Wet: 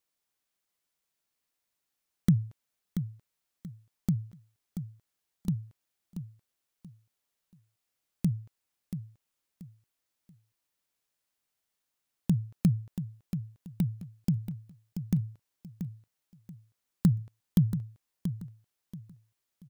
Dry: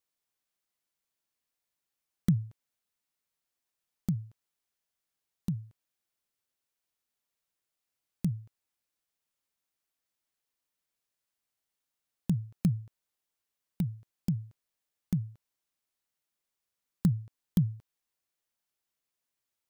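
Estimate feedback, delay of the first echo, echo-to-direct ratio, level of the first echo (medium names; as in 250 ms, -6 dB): 28%, 682 ms, -9.0 dB, -9.5 dB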